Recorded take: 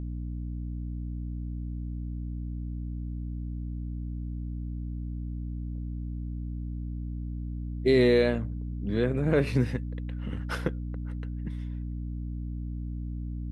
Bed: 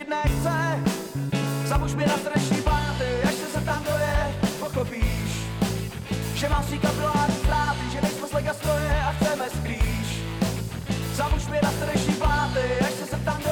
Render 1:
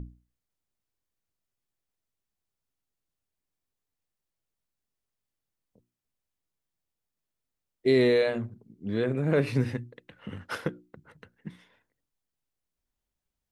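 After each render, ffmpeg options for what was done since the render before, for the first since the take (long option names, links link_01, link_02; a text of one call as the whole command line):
ffmpeg -i in.wav -af "bandreject=frequency=60:width_type=h:width=6,bandreject=frequency=120:width_type=h:width=6,bandreject=frequency=180:width_type=h:width=6,bandreject=frequency=240:width_type=h:width=6,bandreject=frequency=300:width_type=h:width=6,bandreject=frequency=360:width_type=h:width=6" out.wav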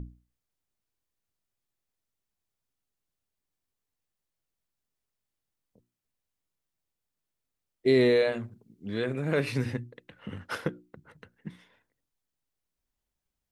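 ffmpeg -i in.wav -filter_complex "[0:a]asettb=1/sr,asplit=3[link_01][link_02][link_03];[link_01]atrim=end=8.324[link_04];[link_02]atrim=start=8.32:end=9.66,asetpts=PTS-STARTPTS,afade=type=in:duration=0.004:curve=qsin,afade=type=out:start_time=1.336:duration=0.004:curve=qsin,tiltshelf=frequency=1200:gain=-4[link_05];[link_03]atrim=start=9.656[link_06];[link_04][link_05]acrossfade=duration=0.004:curve1=hsin:curve2=qsin[link_07];[link_07][link_06]acrossfade=duration=0.004:curve1=qsin:curve2=hsin" out.wav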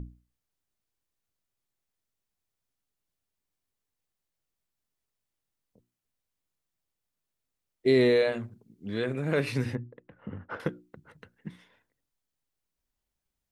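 ffmpeg -i in.wav -filter_complex "[0:a]asettb=1/sr,asplit=3[link_01][link_02][link_03];[link_01]atrim=end=9.754[link_04];[link_02]atrim=start=9.75:end=10.6,asetpts=PTS-STARTPTS,afade=type=in:duration=0.004:curve=qsin,afade=type=out:start_time=0.846:duration=0.004:curve=qsin,lowpass=1300[link_05];[link_03]atrim=start=10.596[link_06];[link_04][link_05]acrossfade=duration=0.004:curve1=hsin:curve2=qsin[link_07];[link_07][link_06]acrossfade=duration=0.004:curve1=qsin:curve2=hsin" out.wav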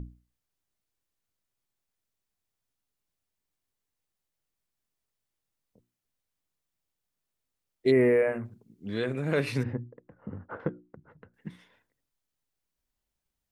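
ffmpeg -i in.wav -filter_complex "[0:a]asplit=3[link_01][link_02][link_03];[link_01]afade=type=out:start_time=7.9:duration=0.02[link_04];[link_02]asuperstop=centerf=4700:order=8:qfactor=0.74,afade=type=in:start_time=7.9:duration=0.02,afade=type=out:start_time=8.44:duration=0.02[link_05];[link_03]afade=type=in:start_time=8.44:duration=0.02[link_06];[link_04][link_05][link_06]amix=inputs=3:normalize=0,asettb=1/sr,asplit=3[link_07][link_08][link_09];[link_07]atrim=end=9.634[link_10];[link_08]atrim=start=9.63:end=11.34,asetpts=PTS-STARTPTS,afade=type=in:duration=0.004:curve=qsin,afade=type=out:start_time=1.706:duration=0.004:curve=qsin,lowpass=1300[link_11];[link_09]atrim=start=11.336[link_12];[link_10][link_11]acrossfade=duration=0.004:curve1=hsin:curve2=qsin[link_13];[link_13][link_12]acrossfade=duration=0.004:curve1=qsin:curve2=hsin" out.wav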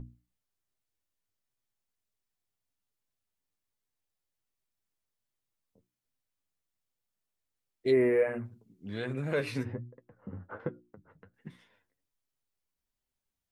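ffmpeg -i in.wav -af "flanger=delay=7.7:depth=3.5:regen=37:speed=1.3:shape=sinusoidal" out.wav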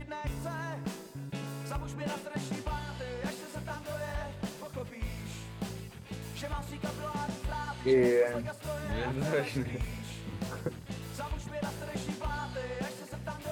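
ffmpeg -i in.wav -i bed.wav -filter_complex "[1:a]volume=-13.5dB[link_01];[0:a][link_01]amix=inputs=2:normalize=0" out.wav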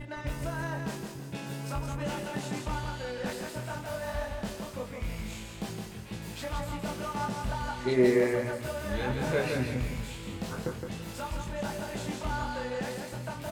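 ffmpeg -i in.wav -filter_complex "[0:a]asplit=2[link_01][link_02];[link_02]adelay=24,volume=-3.5dB[link_03];[link_01][link_03]amix=inputs=2:normalize=0,asplit=2[link_04][link_05];[link_05]aecho=0:1:166|332|498|664:0.562|0.191|0.065|0.0221[link_06];[link_04][link_06]amix=inputs=2:normalize=0" out.wav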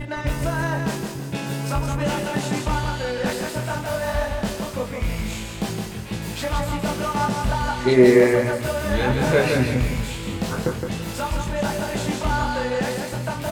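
ffmpeg -i in.wav -af "volume=10.5dB,alimiter=limit=-3dB:level=0:latency=1" out.wav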